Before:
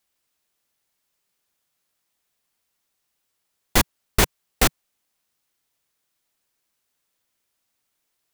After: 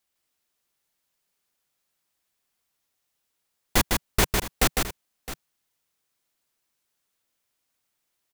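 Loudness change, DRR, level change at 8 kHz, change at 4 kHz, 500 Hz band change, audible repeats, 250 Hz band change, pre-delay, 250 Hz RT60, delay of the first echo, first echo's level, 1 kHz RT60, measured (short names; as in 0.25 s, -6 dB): -2.5 dB, none, -2.0 dB, -2.0 dB, -2.0 dB, 2, -2.0 dB, none, none, 0.154 s, -4.0 dB, none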